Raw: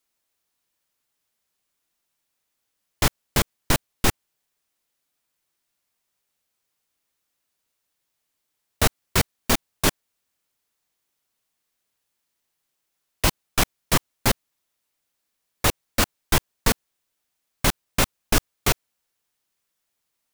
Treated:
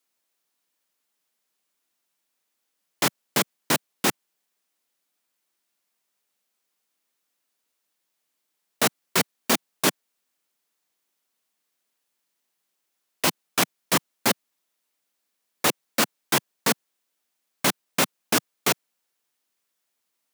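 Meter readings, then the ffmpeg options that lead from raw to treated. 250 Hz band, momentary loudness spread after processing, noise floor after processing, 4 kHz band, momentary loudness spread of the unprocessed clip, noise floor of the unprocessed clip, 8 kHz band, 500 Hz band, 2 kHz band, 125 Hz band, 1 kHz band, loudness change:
−0.5 dB, 3 LU, −78 dBFS, 0.0 dB, 3 LU, −78 dBFS, 0.0 dB, 0.0 dB, 0.0 dB, −9.5 dB, 0.0 dB, −0.5 dB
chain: -af "highpass=frequency=170:width=0.5412,highpass=frequency=170:width=1.3066"

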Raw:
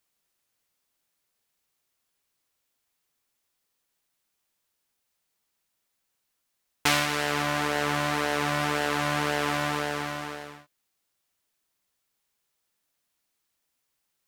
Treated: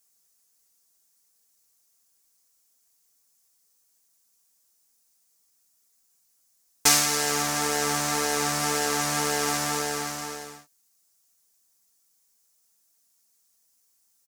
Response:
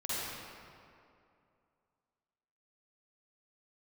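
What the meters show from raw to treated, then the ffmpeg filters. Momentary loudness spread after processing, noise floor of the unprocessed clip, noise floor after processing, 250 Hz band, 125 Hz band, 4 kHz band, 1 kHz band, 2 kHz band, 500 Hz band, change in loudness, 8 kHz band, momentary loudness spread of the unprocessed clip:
12 LU, −79 dBFS, −68 dBFS, −1.0 dB, −3.0 dB, +3.5 dB, 0.0 dB, −2.0 dB, 0.0 dB, +2.5 dB, +13.0 dB, 9 LU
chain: -af "highshelf=frequency=4400:width_type=q:width=1.5:gain=10.5,aecho=1:1:4.4:0.59,volume=-1dB"

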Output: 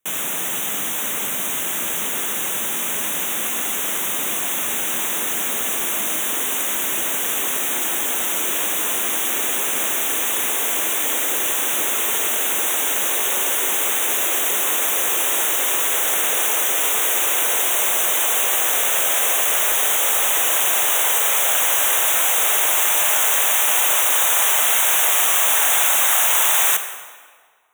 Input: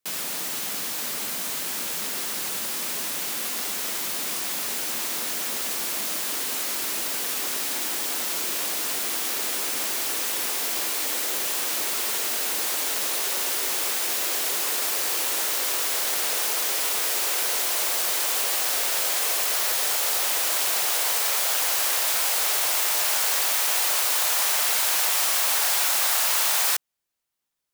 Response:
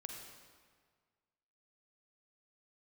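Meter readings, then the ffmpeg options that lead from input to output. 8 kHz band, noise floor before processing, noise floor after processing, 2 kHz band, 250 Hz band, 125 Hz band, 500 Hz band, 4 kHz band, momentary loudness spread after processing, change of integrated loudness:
+6.0 dB, −30 dBFS, −24 dBFS, +6.5 dB, +6.5 dB, can't be measured, +6.5 dB, +2.5 dB, 7 LU, +6.0 dB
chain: -filter_complex "[0:a]asuperstop=centerf=4700:order=8:qfactor=2.2,asplit=2[link_01][link_02];[1:a]atrim=start_sample=2205[link_03];[link_02][link_03]afir=irnorm=-1:irlink=0,volume=5dB[link_04];[link_01][link_04]amix=inputs=2:normalize=0"

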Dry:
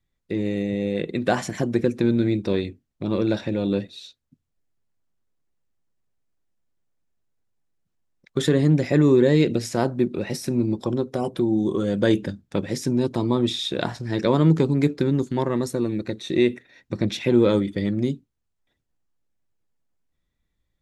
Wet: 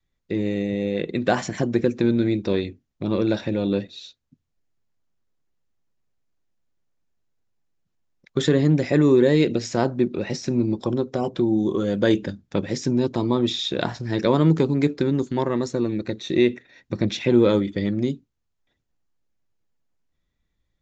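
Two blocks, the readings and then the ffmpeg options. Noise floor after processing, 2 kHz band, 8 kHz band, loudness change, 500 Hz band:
−76 dBFS, +1.0 dB, −1.0 dB, +0.5 dB, +1.0 dB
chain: -af "aresample=16000,aresample=44100,adynamicequalizer=threshold=0.0316:dfrequency=130:dqfactor=1:tfrequency=130:tqfactor=1:attack=5:release=100:ratio=0.375:range=2:mode=cutabove:tftype=bell,volume=1dB"

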